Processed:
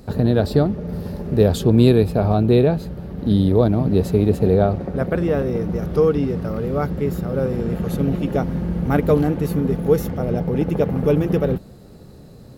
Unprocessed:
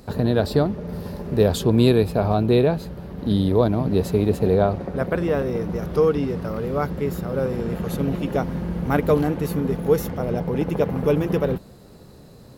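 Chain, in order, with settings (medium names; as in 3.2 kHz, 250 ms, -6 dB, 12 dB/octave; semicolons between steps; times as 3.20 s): bass shelf 460 Hz +5.5 dB; band-stop 1 kHz, Q 13; trim -1 dB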